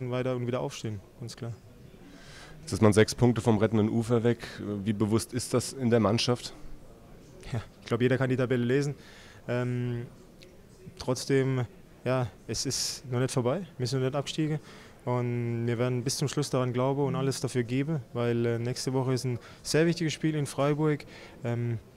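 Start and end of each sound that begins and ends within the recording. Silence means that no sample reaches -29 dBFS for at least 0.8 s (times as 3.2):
2.69–6.46
7.53–10.01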